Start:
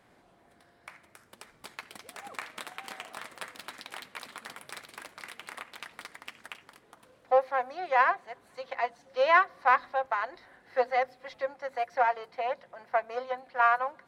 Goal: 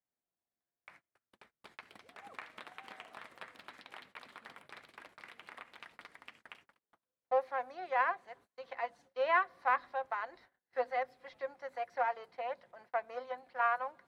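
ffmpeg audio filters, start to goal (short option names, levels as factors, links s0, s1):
-filter_complex "[0:a]acrossover=split=4000[s0][s1];[s1]acompressor=threshold=0.001:ratio=4:attack=1:release=60[s2];[s0][s2]amix=inputs=2:normalize=0,agate=range=0.0316:threshold=0.00251:ratio=16:detection=peak,volume=0.422"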